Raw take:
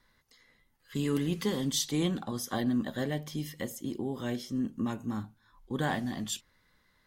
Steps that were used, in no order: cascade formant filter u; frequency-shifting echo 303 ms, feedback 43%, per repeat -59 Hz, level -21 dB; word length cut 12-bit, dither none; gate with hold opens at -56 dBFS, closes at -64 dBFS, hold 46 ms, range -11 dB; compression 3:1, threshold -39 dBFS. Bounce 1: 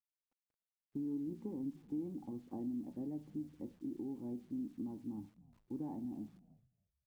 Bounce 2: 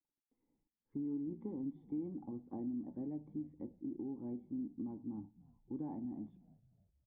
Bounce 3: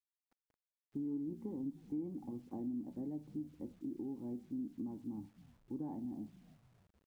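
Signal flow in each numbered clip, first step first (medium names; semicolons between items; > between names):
cascade formant filter > compression > word length cut > frequency-shifting echo > gate with hold; gate with hold > word length cut > cascade formant filter > compression > frequency-shifting echo; gate with hold > cascade formant filter > frequency-shifting echo > word length cut > compression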